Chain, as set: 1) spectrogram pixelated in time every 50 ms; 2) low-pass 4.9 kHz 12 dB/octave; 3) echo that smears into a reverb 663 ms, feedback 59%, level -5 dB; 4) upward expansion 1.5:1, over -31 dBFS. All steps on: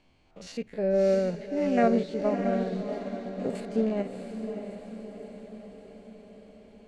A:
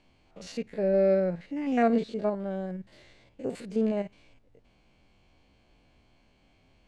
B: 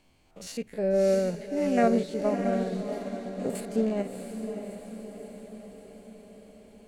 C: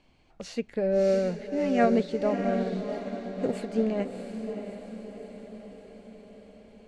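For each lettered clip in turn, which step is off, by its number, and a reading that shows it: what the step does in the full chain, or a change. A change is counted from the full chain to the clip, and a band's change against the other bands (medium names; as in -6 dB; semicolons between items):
3, momentary loudness spread change -6 LU; 2, 4 kHz band +1.5 dB; 1, 4 kHz band +1.5 dB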